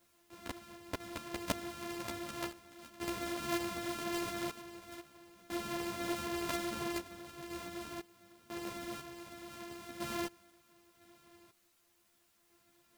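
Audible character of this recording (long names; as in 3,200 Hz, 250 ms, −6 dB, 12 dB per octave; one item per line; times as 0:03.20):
a buzz of ramps at a fixed pitch in blocks of 128 samples
sample-and-hold tremolo 2 Hz, depth 95%
a quantiser's noise floor 12 bits, dither triangular
a shimmering, thickened sound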